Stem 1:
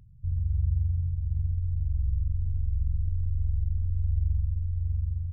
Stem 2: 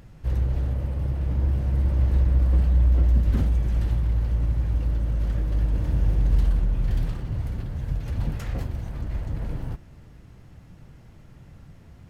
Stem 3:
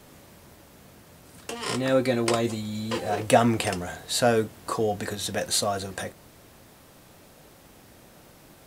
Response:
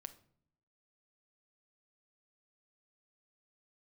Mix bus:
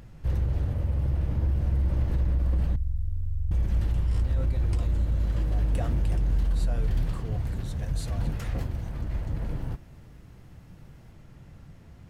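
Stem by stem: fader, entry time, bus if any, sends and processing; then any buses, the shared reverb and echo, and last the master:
+1.0 dB, 0.00 s, no send, peaking EQ 110 Hz -8.5 dB 0.77 oct
-2.5 dB, 0.00 s, muted 2.76–3.51 s, send -9.5 dB, none
-19.0 dB, 2.45 s, no send, none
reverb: on, pre-delay 6 ms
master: peak limiter -18 dBFS, peak gain reduction 7 dB

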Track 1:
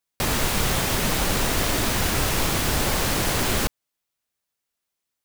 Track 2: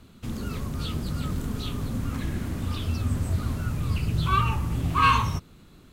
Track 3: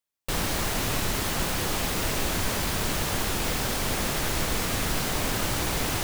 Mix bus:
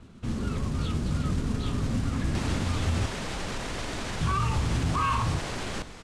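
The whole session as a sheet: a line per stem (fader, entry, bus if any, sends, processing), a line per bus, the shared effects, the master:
-7.5 dB, 2.15 s, no send, peak limiter -16 dBFS, peak gain reduction 6.5 dB; level flattener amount 50%
+2.0 dB, 0.00 s, muted 3.06–4.21 s, no send, treble shelf 3.8 kHz -12 dB; modulation noise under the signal 14 dB
-16.5 dB, 1.35 s, no send, none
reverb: none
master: low-pass 9.1 kHz 24 dB/octave; treble shelf 6.1 kHz -7 dB; peak limiter -18 dBFS, peak gain reduction 9.5 dB

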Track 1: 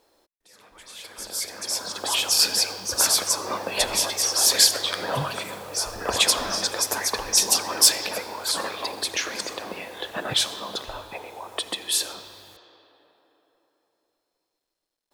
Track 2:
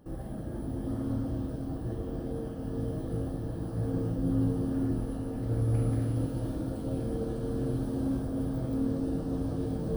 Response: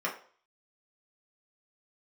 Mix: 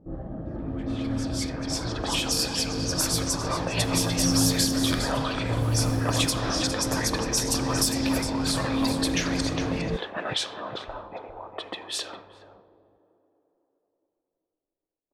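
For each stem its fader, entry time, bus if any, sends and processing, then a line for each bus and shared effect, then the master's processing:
-1.5 dB, 0.00 s, send -17.5 dB, echo send -8 dB, compression 4:1, threshold -23 dBFS, peak gain reduction 11 dB
+2.5 dB, 0.00 s, send -14 dB, no echo send, none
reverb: on, RT60 0.45 s, pre-delay 3 ms
echo: delay 409 ms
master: level-controlled noise filter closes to 500 Hz, open at -20.5 dBFS

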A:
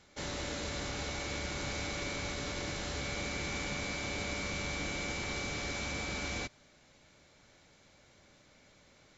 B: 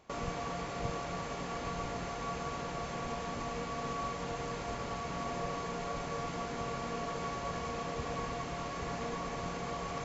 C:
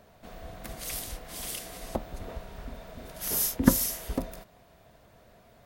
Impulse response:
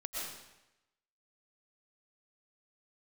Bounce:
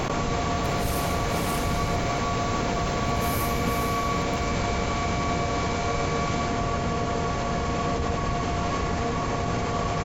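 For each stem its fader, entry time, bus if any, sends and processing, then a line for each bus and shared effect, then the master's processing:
+1.5 dB, 0.00 s, no send, no echo send, none
+1.0 dB, 0.00 s, no send, echo send -6.5 dB, octave divider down 1 oct, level -2 dB; bass shelf 330 Hz +4 dB; level flattener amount 100%
-19.0 dB, 0.00 s, send -8.5 dB, no echo send, level rider gain up to 16 dB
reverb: on, RT60 0.95 s, pre-delay 80 ms
echo: delay 99 ms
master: none

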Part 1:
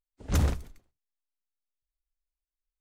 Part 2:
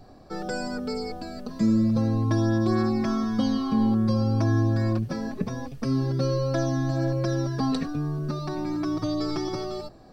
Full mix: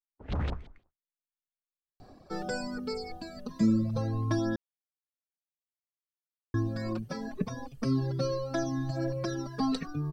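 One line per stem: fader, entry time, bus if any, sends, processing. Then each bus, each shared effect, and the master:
-2.5 dB, 0.00 s, no send, gate with hold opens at -58 dBFS; peak limiter -21.5 dBFS, peak gain reduction 7 dB; LFO low-pass saw up 6 Hz 720–4100 Hz
-2.0 dB, 2.00 s, muted 4.56–6.54 s, no send, reverb removal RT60 1.8 s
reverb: none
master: none

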